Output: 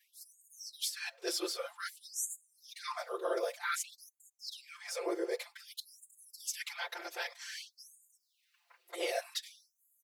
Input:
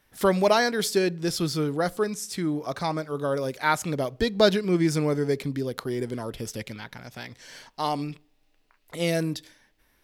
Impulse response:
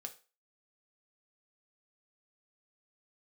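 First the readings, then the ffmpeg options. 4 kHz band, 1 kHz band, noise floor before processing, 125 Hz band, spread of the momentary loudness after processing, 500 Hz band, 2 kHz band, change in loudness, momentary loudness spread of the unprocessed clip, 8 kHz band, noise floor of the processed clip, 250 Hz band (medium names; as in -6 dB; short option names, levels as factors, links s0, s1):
-8.0 dB, -14.5 dB, -66 dBFS, under -40 dB, 19 LU, -15.0 dB, -10.0 dB, -13.0 dB, 17 LU, -4.0 dB, -79 dBFS, -21.5 dB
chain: -af "afftfilt=real='hypot(re,im)*cos(2*PI*random(0))':imag='hypot(re,im)*sin(2*PI*random(1))':win_size=512:overlap=0.75,areverse,acompressor=threshold=0.0141:ratio=6,areverse,aecho=1:1:5.8:0.92,afftfilt=real='re*gte(b*sr/1024,310*pow(6600/310,0.5+0.5*sin(2*PI*0.53*pts/sr)))':imag='im*gte(b*sr/1024,310*pow(6600/310,0.5+0.5*sin(2*PI*0.53*pts/sr)))':win_size=1024:overlap=0.75,volume=1.78"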